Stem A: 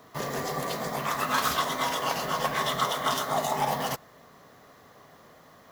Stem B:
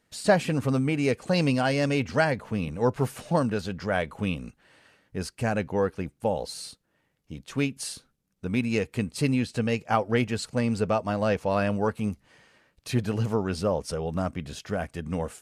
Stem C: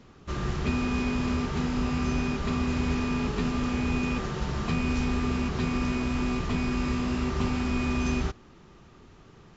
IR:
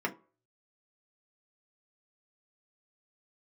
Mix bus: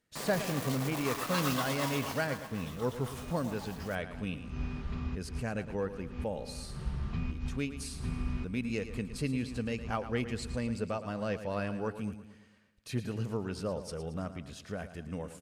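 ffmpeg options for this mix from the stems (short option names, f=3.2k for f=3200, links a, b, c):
-filter_complex "[0:a]acrusher=bits=4:mix=0:aa=0.000001,volume=-9dB,afade=t=out:st=1.85:d=0.59:silence=0.223872[a];[1:a]equalizer=f=800:t=o:w=0.72:g=-4.5,volume=-8.5dB,asplit=3[b][c][d];[c]volume=-12dB[e];[2:a]lowpass=4.5k,asubboost=boost=4:cutoff=180,adelay=2450,volume=-13.5dB[f];[d]apad=whole_len=529711[g];[f][g]sidechaincompress=threshold=-56dB:ratio=4:attack=46:release=129[h];[e]aecho=0:1:112|224|336|448|560|672|784:1|0.5|0.25|0.125|0.0625|0.0312|0.0156[i];[a][b][h][i]amix=inputs=4:normalize=0"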